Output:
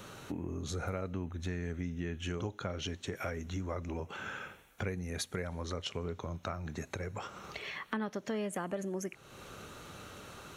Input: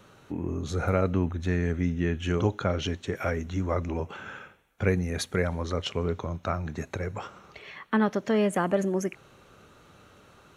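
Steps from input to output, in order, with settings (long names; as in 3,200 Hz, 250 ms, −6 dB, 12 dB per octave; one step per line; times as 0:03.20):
high-shelf EQ 3,800 Hz +6.5 dB
downward compressor 3 to 1, threshold −45 dBFS, peak gain reduction 19.5 dB
level +5 dB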